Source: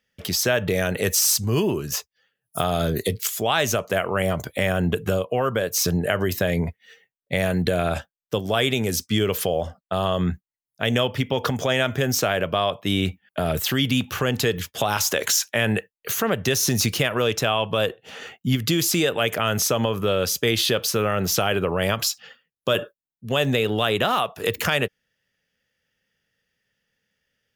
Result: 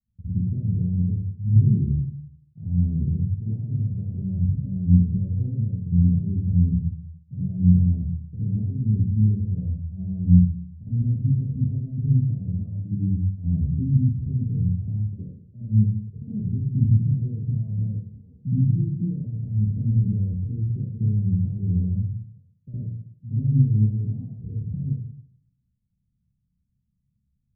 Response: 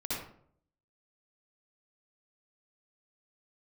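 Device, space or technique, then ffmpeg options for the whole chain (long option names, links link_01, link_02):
club heard from the street: -filter_complex "[0:a]alimiter=limit=-16.5dB:level=0:latency=1:release=155,lowpass=frequency=160:width=0.5412,lowpass=frequency=160:width=1.3066[link_01];[1:a]atrim=start_sample=2205[link_02];[link_01][link_02]afir=irnorm=-1:irlink=0,volume=7dB"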